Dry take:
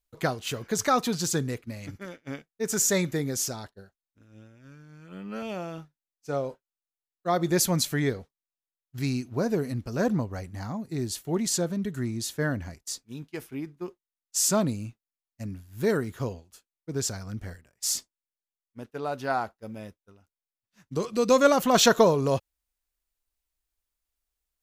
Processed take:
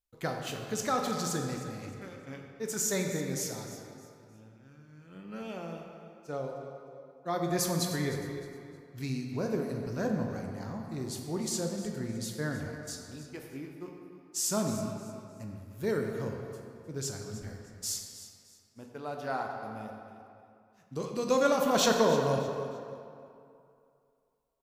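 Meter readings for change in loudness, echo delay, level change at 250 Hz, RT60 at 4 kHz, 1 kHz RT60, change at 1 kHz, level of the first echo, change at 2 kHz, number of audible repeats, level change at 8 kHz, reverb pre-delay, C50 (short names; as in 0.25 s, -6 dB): -6.0 dB, 0.308 s, -5.0 dB, 1.7 s, 2.6 s, -5.0 dB, -14.5 dB, -5.5 dB, 2, -6.5 dB, 14 ms, 3.0 dB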